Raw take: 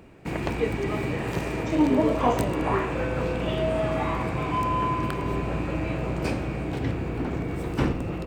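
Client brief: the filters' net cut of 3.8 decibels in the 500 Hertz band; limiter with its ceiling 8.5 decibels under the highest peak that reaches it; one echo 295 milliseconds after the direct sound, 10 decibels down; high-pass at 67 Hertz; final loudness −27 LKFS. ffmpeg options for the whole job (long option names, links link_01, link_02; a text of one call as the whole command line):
ffmpeg -i in.wav -af "highpass=67,equalizer=frequency=500:width_type=o:gain=-5,alimiter=limit=-19.5dB:level=0:latency=1,aecho=1:1:295:0.316,volume=2.5dB" out.wav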